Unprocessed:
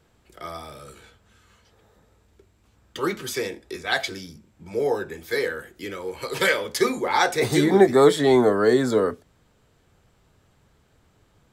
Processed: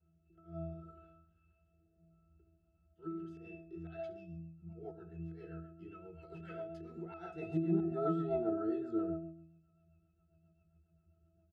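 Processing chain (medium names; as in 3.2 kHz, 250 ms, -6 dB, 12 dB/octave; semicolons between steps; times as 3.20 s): doubling 17 ms -8 dB; on a send: feedback delay 67 ms, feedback 40%, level -11 dB; on the sum: slow attack 125 ms; pitch-class resonator E, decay 0.78 s; rotary cabinet horn 0.7 Hz, later 7.5 Hz, at 3.30 s; trim +8 dB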